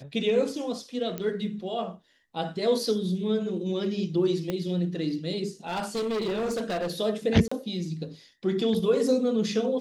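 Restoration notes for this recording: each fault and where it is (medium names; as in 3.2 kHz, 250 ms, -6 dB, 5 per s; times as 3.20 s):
1.18 s: pop -18 dBFS
4.50 s: pop -16 dBFS
5.67–6.92 s: clipped -25.5 dBFS
7.48–7.51 s: dropout 35 ms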